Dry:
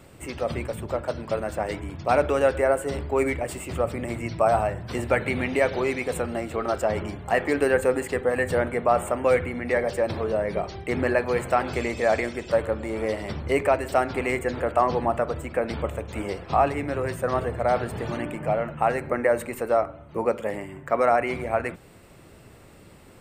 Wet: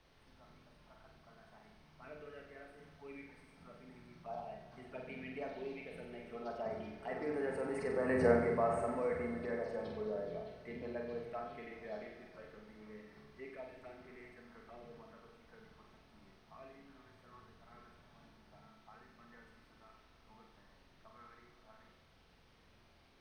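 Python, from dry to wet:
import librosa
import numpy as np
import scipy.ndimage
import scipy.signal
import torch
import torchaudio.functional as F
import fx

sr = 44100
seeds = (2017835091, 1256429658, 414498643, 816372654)

p1 = fx.doppler_pass(x, sr, speed_mps=12, closest_m=1.8, pass_at_s=8.23)
p2 = scipy.signal.sosfilt(scipy.signal.butter(2, 110.0, 'highpass', fs=sr, output='sos'), p1)
p3 = p2 + 0.47 * np.pad(p2, (int(4.6 * sr / 1000.0), 0))[:len(p2)]
p4 = fx.over_compress(p3, sr, threshold_db=-42.0, ratio=-1.0)
p5 = p3 + F.gain(torch.from_numpy(p4), 0.5).numpy()
p6 = fx.env_phaser(p5, sr, low_hz=360.0, high_hz=3400.0, full_db=-31.0)
p7 = fx.dmg_noise_colour(p6, sr, seeds[0], colour='pink', level_db=-61.0)
p8 = scipy.signal.savgol_filter(p7, 15, 4, mode='constant')
p9 = p8 + fx.room_flutter(p8, sr, wall_m=8.0, rt60_s=0.63, dry=0)
p10 = fx.rev_plate(p9, sr, seeds[1], rt60_s=3.0, hf_ratio=0.95, predelay_ms=0, drr_db=9.5)
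y = F.gain(torch.from_numpy(p10), -6.5).numpy()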